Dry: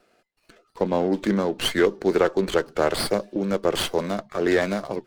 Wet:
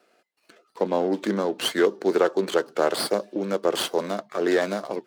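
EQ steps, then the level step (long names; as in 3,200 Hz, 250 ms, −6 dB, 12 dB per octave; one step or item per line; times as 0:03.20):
dynamic equaliser 2,200 Hz, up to −5 dB, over −41 dBFS, Q 2.4
high-pass filter 250 Hz 12 dB per octave
0.0 dB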